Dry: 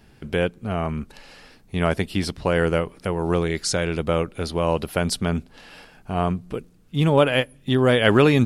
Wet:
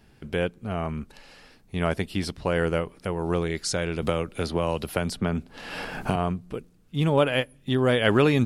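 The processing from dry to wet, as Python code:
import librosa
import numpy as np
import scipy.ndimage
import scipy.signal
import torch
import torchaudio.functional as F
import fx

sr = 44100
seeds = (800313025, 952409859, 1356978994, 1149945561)

y = fx.band_squash(x, sr, depth_pct=100, at=(4.02, 6.16))
y = y * librosa.db_to_amplitude(-4.0)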